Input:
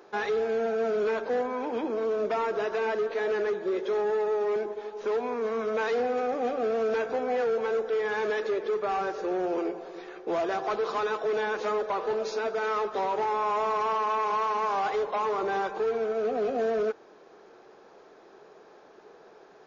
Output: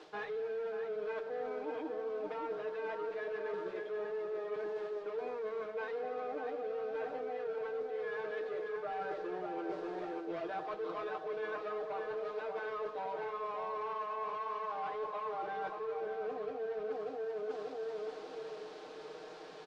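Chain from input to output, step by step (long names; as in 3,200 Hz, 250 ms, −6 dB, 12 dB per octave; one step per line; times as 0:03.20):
running median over 9 samples
comb filter 6.5 ms, depth 98%
on a send: tape delay 589 ms, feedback 39%, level −4 dB
on the sum: background noise blue −46 dBFS
low-pass filter 4,400 Hz 24 dB per octave
reversed playback
downward compressor 10 to 1, threshold −35 dBFS, peak gain reduction 17.5 dB
reversed playback
level −1.5 dB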